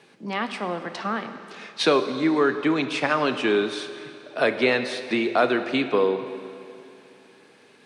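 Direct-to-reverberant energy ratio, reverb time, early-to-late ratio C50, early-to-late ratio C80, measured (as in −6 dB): 8.5 dB, 2.7 s, 9.5 dB, 10.0 dB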